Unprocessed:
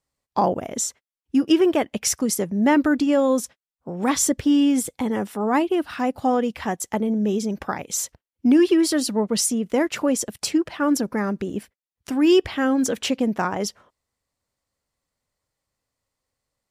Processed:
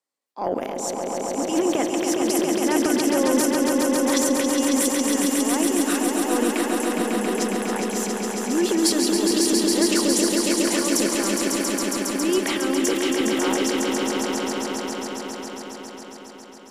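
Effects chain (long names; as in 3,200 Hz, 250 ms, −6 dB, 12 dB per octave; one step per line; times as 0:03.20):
high-pass filter 240 Hz 24 dB per octave
transient designer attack −11 dB, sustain +11 dB
on a send: echo that builds up and dies away 137 ms, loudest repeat 5, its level −5 dB
on the sum: level −4.5 dB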